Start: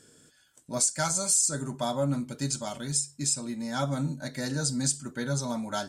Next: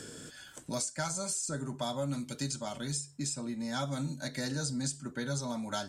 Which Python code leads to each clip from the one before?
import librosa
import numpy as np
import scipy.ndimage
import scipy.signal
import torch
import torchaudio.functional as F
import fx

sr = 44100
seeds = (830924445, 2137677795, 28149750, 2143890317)

y = fx.high_shelf(x, sr, hz=7800.0, db=-7.0)
y = fx.band_squash(y, sr, depth_pct=70)
y = y * librosa.db_to_amplitude(-5.0)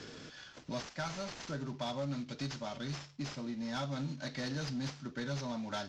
y = fx.cvsd(x, sr, bps=32000)
y = 10.0 ** (-27.0 / 20.0) * np.tanh(y / 10.0 ** (-27.0 / 20.0))
y = y * librosa.db_to_amplitude(-1.5)